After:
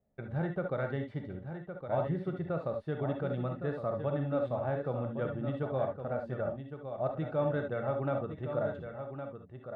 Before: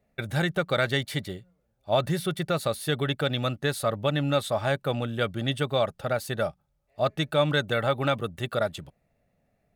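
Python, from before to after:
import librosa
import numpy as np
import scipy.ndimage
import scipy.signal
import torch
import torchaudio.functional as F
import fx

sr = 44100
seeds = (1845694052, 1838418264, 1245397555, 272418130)

y = scipy.signal.sosfilt(scipy.signal.butter(2, 1000.0, 'lowpass', fs=sr, output='sos'), x)
y = y + 10.0 ** (-8.5 / 20.0) * np.pad(y, (int(1112 * sr / 1000.0), 0))[:len(y)]
y = fx.rev_gated(y, sr, seeds[0], gate_ms=90, shape='rising', drr_db=4.0)
y = F.gain(torch.from_numpy(y), -7.5).numpy()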